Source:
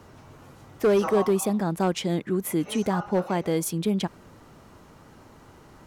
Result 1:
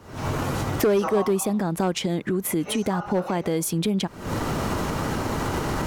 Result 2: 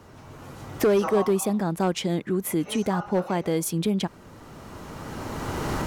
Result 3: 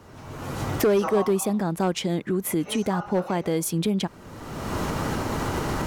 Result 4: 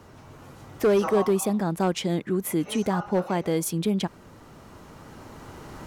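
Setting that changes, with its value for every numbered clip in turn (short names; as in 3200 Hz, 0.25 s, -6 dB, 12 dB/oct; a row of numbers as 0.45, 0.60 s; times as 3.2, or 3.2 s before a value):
recorder AGC, rising by: 89, 14, 33, 5.4 dB/s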